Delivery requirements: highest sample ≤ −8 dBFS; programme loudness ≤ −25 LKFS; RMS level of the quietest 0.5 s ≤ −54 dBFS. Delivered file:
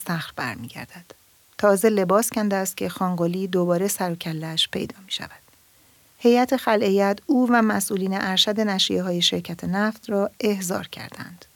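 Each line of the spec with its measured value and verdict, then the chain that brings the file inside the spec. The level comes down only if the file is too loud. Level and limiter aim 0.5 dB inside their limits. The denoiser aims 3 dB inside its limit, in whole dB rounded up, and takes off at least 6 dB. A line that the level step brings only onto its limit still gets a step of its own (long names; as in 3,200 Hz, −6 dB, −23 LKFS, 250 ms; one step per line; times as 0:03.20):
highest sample −6.0 dBFS: out of spec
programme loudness −22.0 LKFS: out of spec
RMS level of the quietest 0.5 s −56 dBFS: in spec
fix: level −3.5 dB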